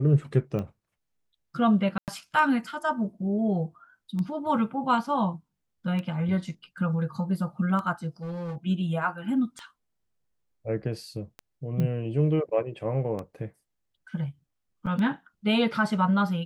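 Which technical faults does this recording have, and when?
scratch tick 33 1/3 rpm −22 dBFS
0:01.98–0:02.08: drop-out 98 ms
0:08.22–0:08.56: clipping −30.5 dBFS
0:11.80: click −19 dBFS
0:14.86–0:14.87: drop-out 7.3 ms

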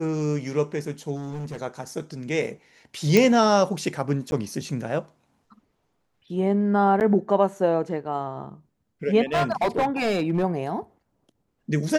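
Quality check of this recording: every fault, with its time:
0:01.16–0:01.57: clipping −29 dBFS
0:03.17: click
0:04.31–0:04.32: drop-out
0:07.00–0:07.01: drop-out 8.7 ms
0:09.32–0:10.44: clipping −18 dBFS

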